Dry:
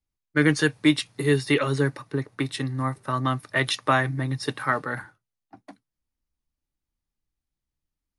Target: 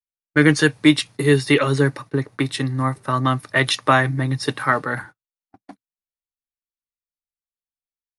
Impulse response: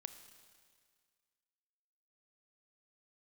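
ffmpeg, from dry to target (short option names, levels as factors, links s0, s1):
-af "agate=range=0.0282:threshold=0.00631:ratio=16:detection=peak,volume=1.88"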